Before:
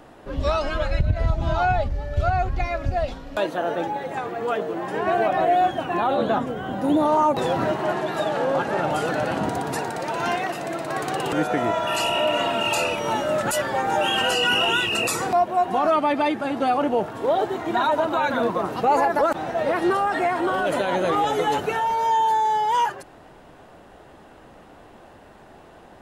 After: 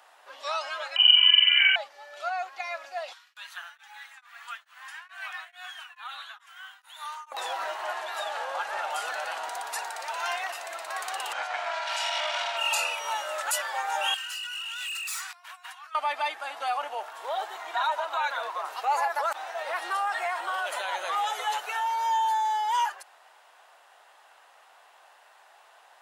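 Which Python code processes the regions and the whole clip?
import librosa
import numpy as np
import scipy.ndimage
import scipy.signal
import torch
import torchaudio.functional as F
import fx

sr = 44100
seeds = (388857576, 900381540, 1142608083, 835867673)

y = fx.chain(x, sr, fx.room_flutter(wall_m=7.6, rt60_s=1.1),
    fx.freq_invert(carrier_hz=3000), at=(0.96, 1.76))
y = fx.chain(y, sr, fx.highpass(hz=1300.0, slope=24),
    fx.tremolo_abs(hz=2.3), at=(3.13, 7.32))
y = fx.chain(y, sr, fx.lower_of_two(delay_ms=1.3),
    fx.lowpass(hz=5800.0, slope=12), at=(11.33, 12.57))
y = fx.chain(y, sr, fx.over_compress(threshold_db=-29.0, ratio=-1.0),
    fx.highpass(hz=1300.0, slope=24),
    fx.clip_hard(threshold_db=-30.0), at=(14.14, 15.95))
y = fx.chain(y, sr, fx.highpass(hz=260.0, slope=12),
    fx.high_shelf(hz=10000.0, db=-6.5), at=(17.65, 18.65))
y = scipy.signal.sosfilt(scipy.signal.butter(4, 800.0, 'highpass', fs=sr, output='sos'), y)
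y = fx.peak_eq(y, sr, hz=1100.0, db=-4.0, octaves=2.8)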